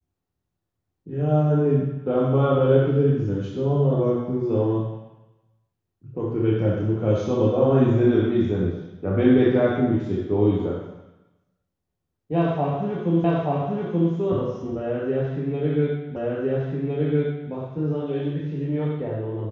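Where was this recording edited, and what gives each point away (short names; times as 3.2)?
13.24 repeat of the last 0.88 s
16.16 repeat of the last 1.36 s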